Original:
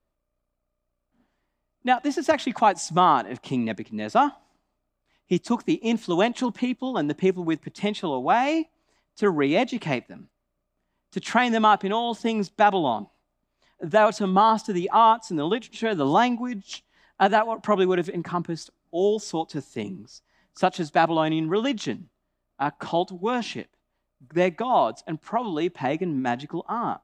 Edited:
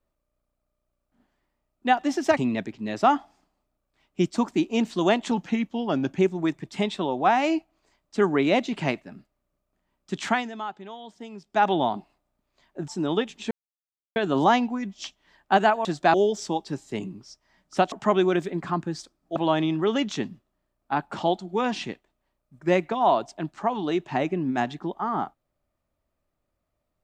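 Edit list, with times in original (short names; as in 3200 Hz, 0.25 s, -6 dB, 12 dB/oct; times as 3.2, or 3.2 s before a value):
2.37–3.49 cut
6.43–7.23 speed 91%
11.28–12.73 dip -15.5 dB, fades 0.26 s
13.92–15.22 cut
15.85 insert silence 0.65 s
17.54–18.98 swap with 20.76–21.05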